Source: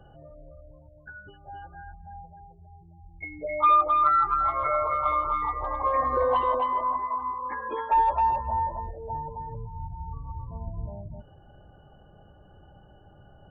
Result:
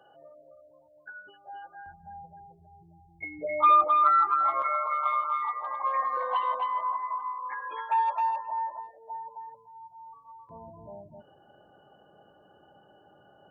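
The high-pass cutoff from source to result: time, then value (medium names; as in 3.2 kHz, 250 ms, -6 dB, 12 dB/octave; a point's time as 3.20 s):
500 Hz
from 1.86 s 140 Hz
from 3.84 s 360 Hz
from 4.62 s 1 kHz
from 10.49 s 280 Hz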